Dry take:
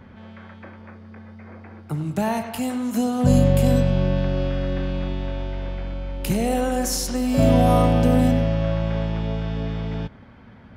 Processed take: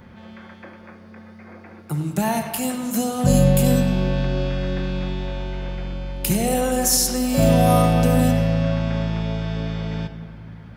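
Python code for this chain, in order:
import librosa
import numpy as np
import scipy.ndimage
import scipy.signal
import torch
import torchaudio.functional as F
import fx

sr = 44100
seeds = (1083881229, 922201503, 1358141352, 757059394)

y = fx.high_shelf(x, sr, hz=5500.0, db=11.5)
y = fx.room_shoebox(y, sr, seeds[0], volume_m3=3400.0, walls='mixed', distance_m=0.89)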